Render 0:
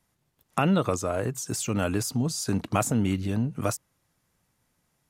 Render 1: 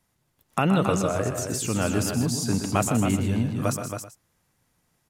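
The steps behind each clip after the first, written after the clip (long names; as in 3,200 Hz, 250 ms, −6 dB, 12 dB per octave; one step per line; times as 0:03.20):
multi-tap delay 125/159/273/385 ms −8.5/−11.5/−7/−19 dB
level +1 dB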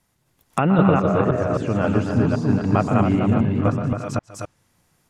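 delay that plays each chunk backwards 262 ms, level −1 dB
treble cut that deepens with the level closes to 1,800 Hz, closed at −21.5 dBFS
level +3.5 dB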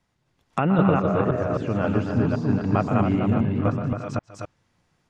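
low-pass filter 5,200 Hz 12 dB per octave
level −3 dB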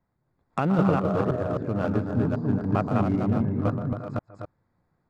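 adaptive Wiener filter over 15 samples
level −2.5 dB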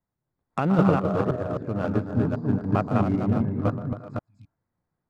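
healed spectral selection 0:04.30–0:04.53, 280–2,100 Hz before
expander for the loud parts 1.5 to 1, over −43 dBFS
level +3 dB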